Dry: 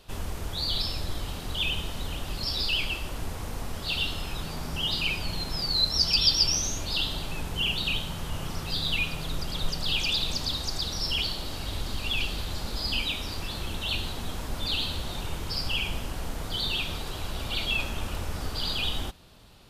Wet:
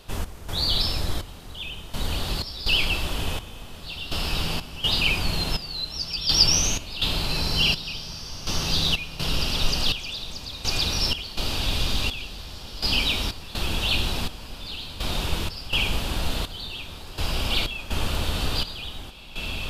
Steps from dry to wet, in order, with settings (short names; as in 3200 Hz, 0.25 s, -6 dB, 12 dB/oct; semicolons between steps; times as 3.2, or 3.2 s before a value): diffused feedback echo 1.808 s, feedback 46%, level -7.5 dB; step gate "x.xxx...x" 62 bpm -12 dB; gain +5.5 dB